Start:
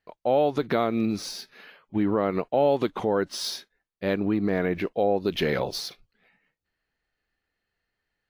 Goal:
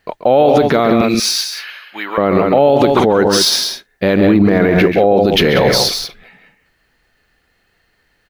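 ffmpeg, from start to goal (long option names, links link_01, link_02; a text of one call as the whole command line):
ffmpeg -i in.wav -filter_complex "[0:a]asettb=1/sr,asplit=3[link_01][link_02][link_03];[link_01]atrim=end=1.014[link_04];[link_02]atrim=start=1.01:end=2.18,asetpts=PTS-STARTPTS,afade=type=in:duration=0.004:curve=qsin,afade=type=out:start_time=1.166:duration=0.004:curve=qsin,highpass=1500[link_05];[link_03]atrim=start=2.176[link_06];[link_04][link_05]acrossfade=duration=0.004:curve1=hsin:curve2=qsin[link_07];[link_07][link_06]acrossfade=duration=0.004:curve1=qsin:curve2=hsin,aecho=1:1:134.1|183.7:0.316|0.316,alimiter=level_in=21dB:limit=-1dB:release=50:level=0:latency=1,volume=-1dB" out.wav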